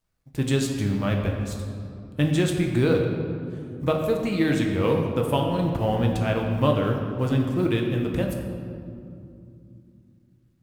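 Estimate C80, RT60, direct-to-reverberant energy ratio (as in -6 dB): 5.5 dB, 2.6 s, 1.0 dB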